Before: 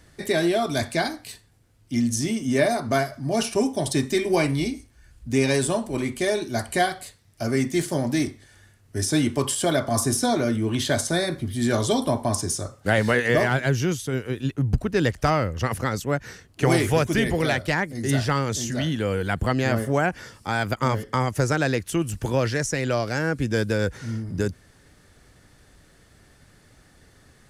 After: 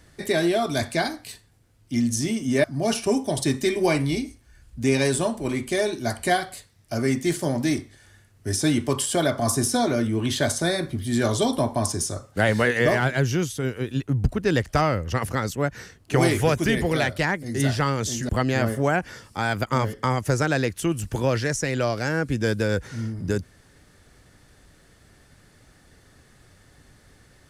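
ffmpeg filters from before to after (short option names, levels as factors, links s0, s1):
-filter_complex "[0:a]asplit=3[s0][s1][s2];[s0]atrim=end=2.642[s3];[s1]atrim=start=3.128:end=18.782[s4];[s2]atrim=start=19.388[s5];[s3][s4]acrossfade=d=0.004:c1=hsin:c2=hsin[s6];[s6][s5]acrossfade=d=0.004:c1=hsin:c2=hsin"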